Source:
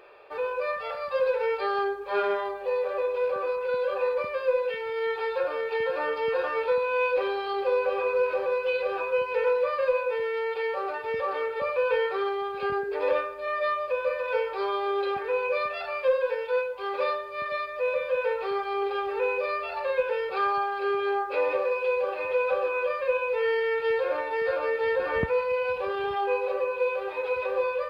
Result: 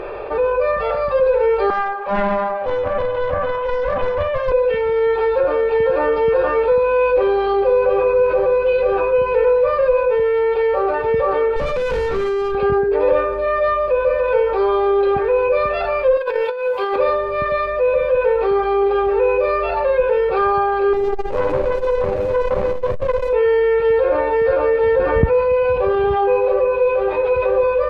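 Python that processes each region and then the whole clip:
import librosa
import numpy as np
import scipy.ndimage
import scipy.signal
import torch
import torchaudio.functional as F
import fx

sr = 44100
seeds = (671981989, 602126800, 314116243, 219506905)

y = fx.chain(x, sr, fx.cheby1_highpass(hz=590.0, order=4),
    fx.high_shelf(hz=4000.0, db=-10.0),
    fx.doppler_dist(depth_ms=0.38), at=(1.7, 4.52))
y = fx.chain(y, sr, fx.high_shelf(hz=2600.0, db=10.0),
    fx.notch(hz=780.0, q=14.0),
    fx.tube_stage(drive_db=33.0, bias=0.4), at=(11.56, 12.55))
y = fx.chain(y, sr, fx.highpass(hz=550.0, slope=6),
    fx.high_shelf(hz=4500.0, db=9.5),
    fx.over_compress(threshold_db=-34.0, ratio=-0.5), at=(16.17, 16.96))
y = fx.chain(y, sr, fx.median_filter(points=41),
    fx.echo_single(ms=111, db=-10.5),
    fx.transformer_sat(knee_hz=890.0), at=(20.93, 23.33))
y = fx.tilt_eq(y, sr, slope=-4.0)
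y = fx.env_flatten(y, sr, amount_pct=50)
y = y * 10.0 ** (3.0 / 20.0)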